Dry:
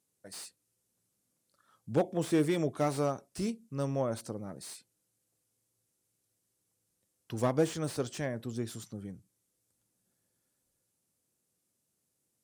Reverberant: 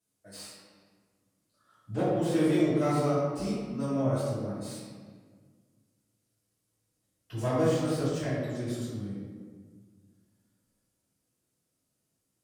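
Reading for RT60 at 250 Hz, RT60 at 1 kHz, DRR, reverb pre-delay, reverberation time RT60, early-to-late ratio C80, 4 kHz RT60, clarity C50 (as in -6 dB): 2.1 s, 1.6 s, -13.0 dB, 3 ms, 1.7 s, 1.0 dB, 1.0 s, -1.5 dB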